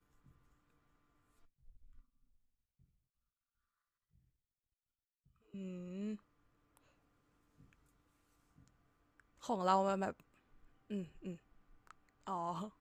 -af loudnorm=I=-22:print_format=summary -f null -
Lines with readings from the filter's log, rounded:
Input Integrated:    -41.3 LUFS
Input True Peak:     -19.6 dBTP
Input LRA:            13.7 LU
Input Threshold:     -52.5 LUFS